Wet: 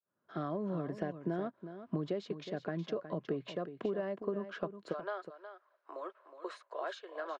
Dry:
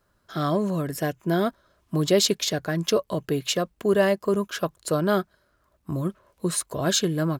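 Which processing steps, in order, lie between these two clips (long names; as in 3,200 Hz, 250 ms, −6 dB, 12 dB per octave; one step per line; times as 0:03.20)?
fade in at the beginning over 0.80 s
Bessel high-pass filter 200 Hz, order 8, from 0:04.92 800 Hz
downward compressor 10 to 1, threshold −34 dBFS, peak gain reduction 19 dB
head-to-tape spacing loss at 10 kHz 42 dB
single-tap delay 366 ms −11 dB
level +3 dB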